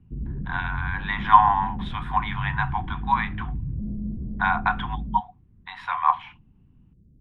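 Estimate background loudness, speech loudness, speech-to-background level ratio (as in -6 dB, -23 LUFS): -33.0 LUFS, -24.5 LUFS, 8.5 dB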